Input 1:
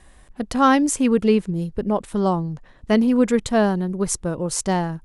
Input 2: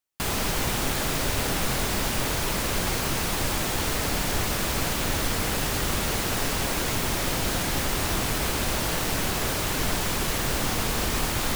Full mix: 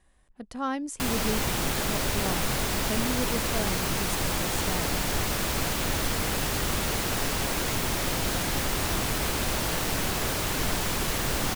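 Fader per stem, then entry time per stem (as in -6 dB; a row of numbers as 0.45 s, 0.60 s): -14.5 dB, -1.5 dB; 0.00 s, 0.80 s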